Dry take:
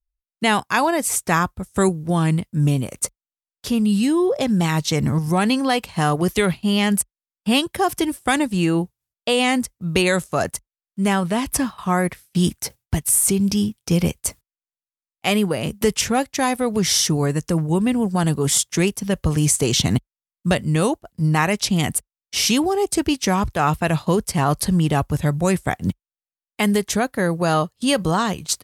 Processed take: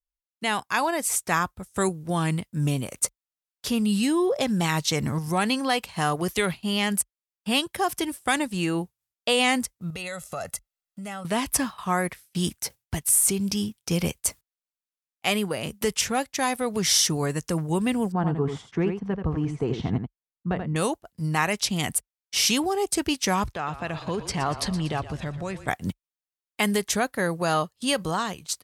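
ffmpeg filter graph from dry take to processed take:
ffmpeg -i in.wav -filter_complex "[0:a]asettb=1/sr,asplit=3[link_01][link_02][link_03];[link_01]atrim=end=9.904[link_04];[link_02]atrim=start=9.9:end=11.25,asetpts=PTS-STARTPTS,afade=type=in:duration=0.004:curve=qsin,afade=type=out:start_time=1.346:duration=0.004:curve=qsin,aecho=1:1:1.5:0.64,atrim=end_sample=59535,acompressor=threshold=-30dB:ratio=6:attack=3.2:release=140:knee=1:detection=peak[link_05];[link_03]atrim=start=11.246[link_06];[link_04][link_05]acrossfade=duration=0.004:curve1=hsin:curve2=qsin[link_07];[link_07][link_06]acrossfade=duration=0.004:curve1=qsin:curve2=hsin,asettb=1/sr,asplit=3[link_08][link_09][link_10];[link_08]atrim=end=18.124[link_11];[link_09]atrim=start=18.12:end=20.76,asetpts=PTS-STARTPTS,afade=type=in:duration=0.004:curve=qsin,afade=type=out:start_time=2.636:duration=0.004:curve=qsin,lowpass=1100,bandreject=frequency=580:width=5.4,aecho=1:1:83:0.447,atrim=end_sample=116424[link_12];[link_10]atrim=start=20.756[link_13];[link_11][link_12]acrossfade=duration=0.004:curve1=hsin:curve2=qsin[link_14];[link_14][link_13]acrossfade=duration=0.004:curve1=qsin:curve2=hsin,asettb=1/sr,asplit=3[link_15][link_16][link_17];[link_15]atrim=end=23.524[link_18];[link_16]atrim=start=23.52:end=25.68,asetpts=PTS-STARTPTS,afade=type=in:duration=0.004:curve=qsin,afade=type=out:start_time=2.156:duration=0.004:curve=qsin,lowpass=5100,acompressor=threshold=-26dB:ratio=2.5:attack=3.2:release=140:knee=1:detection=peak,asplit=7[link_19][link_20][link_21][link_22][link_23][link_24][link_25];[link_20]adelay=119,afreqshift=-31,volume=-13dB[link_26];[link_21]adelay=238,afreqshift=-62,volume=-17.7dB[link_27];[link_22]adelay=357,afreqshift=-93,volume=-22.5dB[link_28];[link_23]adelay=476,afreqshift=-124,volume=-27.2dB[link_29];[link_24]adelay=595,afreqshift=-155,volume=-31.9dB[link_30];[link_25]adelay=714,afreqshift=-186,volume=-36.7dB[link_31];[link_19][link_26][link_27][link_28][link_29][link_30][link_31]amix=inputs=7:normalize=0,atrim=end_sample=95256[link_32];[link_17]atrim=start=25.676[link_33];[link_18][link_32]acrossfade=duration=0.004:curve1=hsin:curve2=qsin[link_34];[link_34][link_33]acrossfade=duration=0.004:curve1=qsin:curve2=hsin,dynaudnorm=framelen=140:gausssize=9:maxgain=11.5dB,lowshelf=frequency=480:gain=-6.5,volume=-7.5dB" out.wav

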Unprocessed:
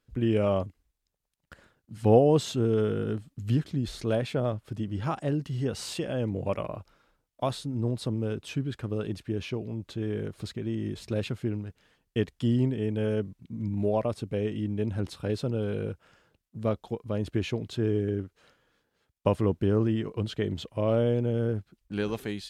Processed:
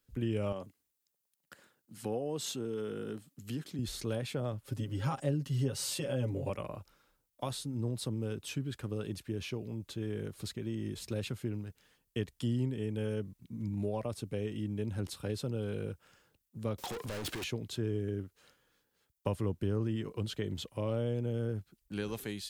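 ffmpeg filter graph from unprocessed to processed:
ffmpeg -i in.wav -filter_complex "[0:a]asettb=1/sr,asplit=3[link_01][link_02][link_03];[link_01]atrim=end=0.524[link_04];[link_02]atrim=start=0.52:end=3.79,asetpts=PTS-STARTPTS,afade=type=in:duration=0.004:curve=qsin,afade=type=out:start_time=3.266:duration=0.004:curve=qsin,highpass=180,acompressor=threshold=-33dB:ratio=1.5:attack=3.2:release=140:knee=1:detection=peak[link_05];[link_03]atrim=start=3.786[link_06];[link_04][link_05]acrossfade=duration=0.004:curve1=hsin:curve2=qsin[link_07];[link_07][link_06]acrossfade=duration=0.004:curve1=qsin:curve2=hsin,asettb=1/sr,asplit=3[link_08][link_09][link_10];[link_08]atrim=end=4.644[link_11];[link_09]atrim=start=4.64:end=6.5,asetpts=PTS-STARTPTS,afade=type=in:duration=0.004:curve=qsin,afade=type=out:start_time=1.856:duration=0.004:curve=qsin,equalizer=frequency=570:width=6:gain=6,aecho=1:1:7.4:0.89,atrim=end_sample=82026[link_12];[link_10]atrim=start=6.496[link_13];[link_11][link_12]acrossfade=duration=0.004:curve1=hsin:curve2=qsin[link_14];[link_14][link_13]acrossfade=duration=0.004:curve1=qsin:curve2=hsin,asettb=1/sr,asplit=3[link_15][link_16][link_17];[link_15]atrim=end=16.784[link_18];[link_16]atrim=start=16.78:end=17.44,asetpts=PTS-STARTPTS,afade=type=in:duration=0.004:curve=qsin,afade=type=out:start_time=0.656:duration=0.004:curve=qsin,asplit=2[link_19][link_20];[link_20]highpass=frequency=720:poles=1,volume=41dB,asoftclip=type=tanh:threshold=-15dB[link_21];[link_19][link_21]amix=inputs=2:normalize=0,lowpass=frequency=4400:poles=1,volume=-6dB,acompressor=threshold=-35dB:ratio=4:attack=3.2:release=140:knee=1:detection=peak[link_22];[link_17]atrim=start=17.436[link_23];[link_18][link_22]acrossfade=duration=0.004:curve1=hsin:curve2=qsin[link_24];[link_24][link_23]acrossfade=duration=0.004:curve1=qsin:curve2=hsin,aemphasis=mode=production:type=50kf,bandreject=frequency=660:width=12,acrossover=split=140[link_25][link_26];[link_26]acompressor=threshold=-30dB:ratio=2[link_27];[link_25][link_27]amix=inputs=2:normalize=0,volume=-5dB" out.wav

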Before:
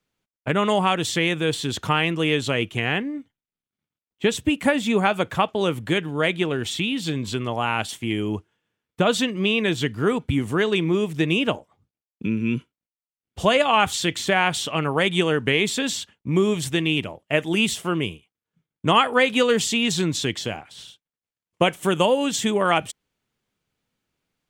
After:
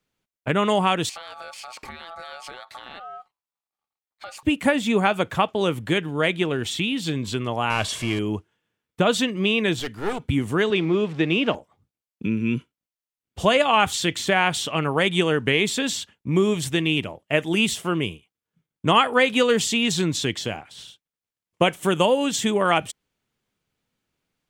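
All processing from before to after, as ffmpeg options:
ffmpeg -i in.wav -filter_complex "[0:a]asettb=1/sr,asplit=3[link_01][link_02][link_03];[link_01]atrim=end=1.094[link_04];[link_02]atrim=start=1.09:end=4.43,asetpts=PTS-STARTPTS,afade=type=in:duration=0.004:curve=qsin,afade=type=out:start_time=3.336:duration=0.004:curve=qsin,acompressor=threshold=-32dB:ratio=8:attack=3.2:release=140:knee=1:detection=peak,aeval=exprs='val(0)*sin(2*PI*1000*n/s)':channel_layout=same[link_05];[link_03]atrim=start=4.426[link_06];[link_04][link_05]acrossfade=duration=0.004:curve1=hsin:curve2=qsin[link_07];[link_07][link_06]acrossfade=duration=0.004:curve1=qsin:curve2=hsin,asettb=1/sr,asplit=3[link_08][link_09][link_10];[link_08]atrim=end=7.704[link_11];[link_09]atrim=start=7.7:end=8.19,asetpts=PTS-STARTPTS,afade=type=in:duration=0.004:curve=qsin,afade=type=out:start_time=0.486:duration=0.004:curve=qsin,aeval=exprs='val(0)+0.5*0.0355*sgn(val(0))':channel_layout=same,lowpass=8700,aecho=1:1:1.8:0.37,atrim=end_sample=21609[link_12];[link_10]atrim=start=8.186[link_13];[link_11][link_12]acrossfade=duration=0.004:curve1=hsin:curve2=qsin[link_14];[link_14][link_13]acrossfade=duration=0.004:curve1=qsin:curve2=hsin,asettb=1/sr,asplit=3[link_15][link_16][link_17];[link_15]atrim=end=9.794[link_18];[link_16]atrim=start=9.79:end=10.2,asetpts=PTS-STARTPTS,afade=type=in:duration=0.004:curve=qsin,afade=type=out:start_time=0.406:duration=0.004:curve=qsin,lowshelf=frequency=210:gain=-8.5,aeval=exprs='clip(val(0),-1,0.0237)':channel_layout=same[link_19];[link_17]atrim=start=10.196[link_20];[link_18][link_19]acrossfade=duration=0.004:curve1=hsin:curve2=qsin[link_21];[link_21][link_20]acrossfade=duration=0.004:curve1=qsin:curve2=hsin,asettb=1/sr,asplit=3[link_22][link_23][link_24];[link_22]atrim=end=10.704[link_25];[link_23]atrim=start=10.7:end=11.55,asetpts=PTS-STARTPTS,afade=type=in:duration=0.004:curve=qsin,afade=type=out:start_time=0.846:duration=0.004:curve=qsin,aeval=exprs='val(0)+0.5*0.0178*sgn(val(0))':channel_layout=same,highpass=160,lowpass=4100[link_26];[link_24]atrim=start=11.546[link_27];[link_25][link_26]acrossfade=duration=0.004:curve1=hsin:curve2=qsin[link_28];[link_28][link_27]acrossfade=duration=0.004:curve1=qsin:curve2=hsin" out.wav

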